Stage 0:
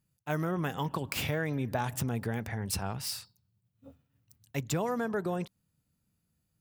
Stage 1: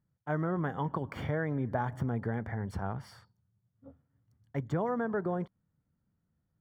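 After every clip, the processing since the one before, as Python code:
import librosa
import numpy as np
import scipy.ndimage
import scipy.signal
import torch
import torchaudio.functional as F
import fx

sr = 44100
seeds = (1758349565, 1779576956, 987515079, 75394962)

y = scipy.signal.savgol_filter(x, 41, 4, mode='constant')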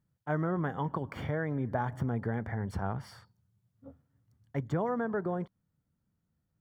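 y = fx.rider(x, sr, range_db=10, speed_s=2.0)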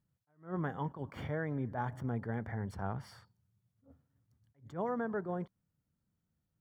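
y = fx.attack_slew(x, sr, db_per_s=200.0)
y = F.gain(torch.from_numpy(y), -3.5).numpy()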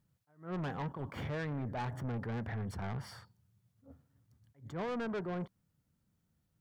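y = 10.0 ** (-39.0 / 20.0) * np.tanh(x / 10.0 ** (-39.0 / 20.0))
y = F.gain(torch.from_numpy(y), 5.0).numpy()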